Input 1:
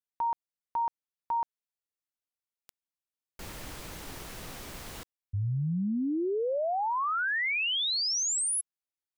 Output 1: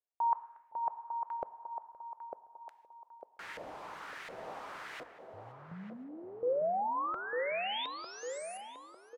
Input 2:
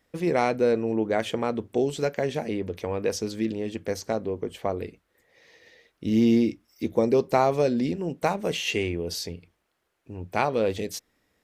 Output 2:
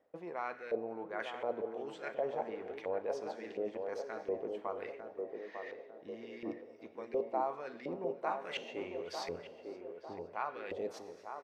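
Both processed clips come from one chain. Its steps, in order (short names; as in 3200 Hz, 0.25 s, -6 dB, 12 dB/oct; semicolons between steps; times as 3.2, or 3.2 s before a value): reverse; compressor 10:1, threshold -34 dBFS; reverse; outdoor echo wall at 40 m, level -19 dB; non-linear reverb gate 0.46 s falling, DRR 11.5 dB; LFO band-pass saw up 1.4 Hz 540–2000 Hz; on a send: narrowing echo 0.9 s, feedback 55%, band-pass 440 Hz, level -4 dB; on the sum: warbling echo 0.519 s, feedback 32%, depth 80 cents, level -24 dB; gain +7.5 dB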